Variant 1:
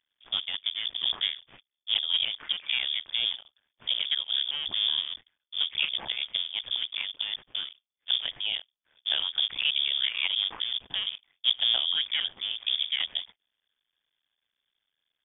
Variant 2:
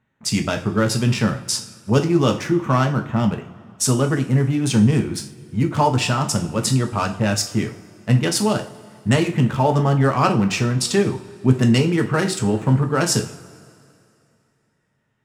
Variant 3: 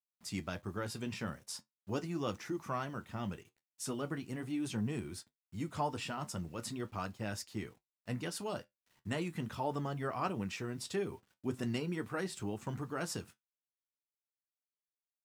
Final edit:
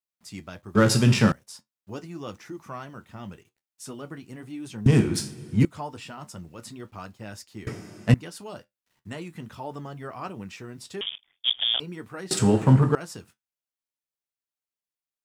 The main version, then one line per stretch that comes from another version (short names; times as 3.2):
3
0.75–1.32 from 2
4.86–5.65 from 2
7.67–8.14 from 2
11.01–11.8 from 1
12.31–12.95 from 2